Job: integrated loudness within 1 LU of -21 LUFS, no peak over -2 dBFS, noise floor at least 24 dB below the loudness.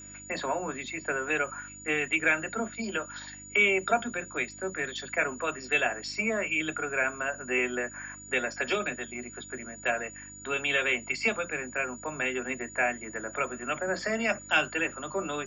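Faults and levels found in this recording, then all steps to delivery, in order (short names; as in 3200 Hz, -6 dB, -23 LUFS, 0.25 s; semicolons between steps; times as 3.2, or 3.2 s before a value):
hum 50 Hz; harmonics up to 300 Hz; hum level -51 dBFS; steady tone 6900 Hz; tone level -45 dBFS; loudness -29.5 LUFS; peak -11.0 dBFS; loudness target -21.0 LUFS
-> de-hum 50 Hz, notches 6; notch 6900 Hz, Q 30; gain +8.5 dB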